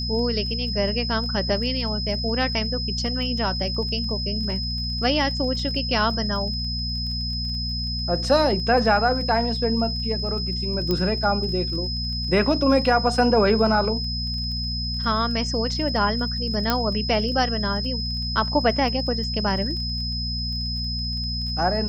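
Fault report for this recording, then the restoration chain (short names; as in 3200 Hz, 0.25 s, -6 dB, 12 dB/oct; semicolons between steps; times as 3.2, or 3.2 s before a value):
crackle 22/s -33 dBFS
hum 60 Hz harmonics 4 -29 dBFS
tone 5100 Hz -28 dBFS
10.91 pop -11 dBFS
16.7 pop -6 dBFS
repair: de-click; de-hum 60 Hz, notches 4; notch 5100 Hz, Q 30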